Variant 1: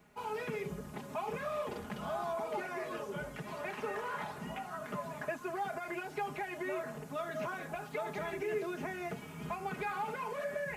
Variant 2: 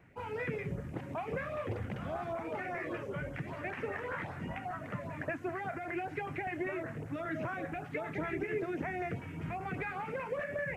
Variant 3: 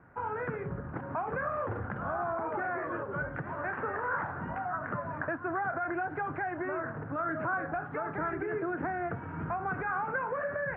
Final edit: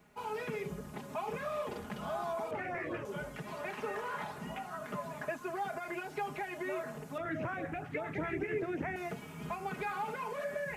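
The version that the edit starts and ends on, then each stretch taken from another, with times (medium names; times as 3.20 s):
1
2.51–3.05 s: from 2
7.18–8.96 s: from 2
not used: 3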